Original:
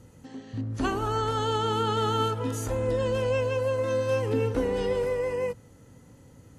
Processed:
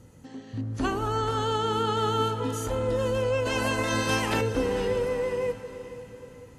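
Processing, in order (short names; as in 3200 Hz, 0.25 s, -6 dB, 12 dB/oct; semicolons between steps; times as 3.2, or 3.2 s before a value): 3.45–4.4 spectral limiter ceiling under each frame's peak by 24 dB; diffused feedback echo 0.482 s, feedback 44%, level -12.5 dB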